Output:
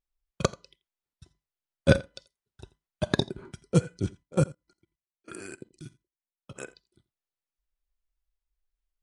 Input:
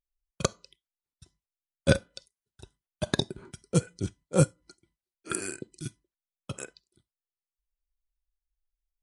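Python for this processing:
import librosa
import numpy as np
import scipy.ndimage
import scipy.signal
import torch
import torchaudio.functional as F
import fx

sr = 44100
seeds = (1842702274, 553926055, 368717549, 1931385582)

y = fx.lowpass(x, sr, hz=3400.0, slope=6)
y = fx.level_steps(y, sr, step_db=22, at=(4.22, 6.55), fade=0.02)
y = y + 10.0 ** (-22.0 / 20.0) * np.pad(y, (int(85 * sr / 1000.0), 0))[:len(y)]
y = F.gain(torch.from_numpy(y), 2.5).numpy()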